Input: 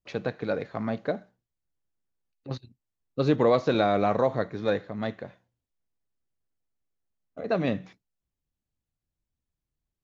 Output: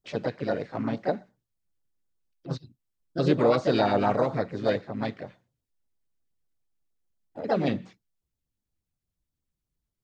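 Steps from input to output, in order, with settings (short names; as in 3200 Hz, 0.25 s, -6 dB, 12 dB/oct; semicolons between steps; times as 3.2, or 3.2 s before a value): LFO notch sine 8.4 Hz 590–2600 Hz; harmoniser +3 st -8 dB, +4 st -7 dB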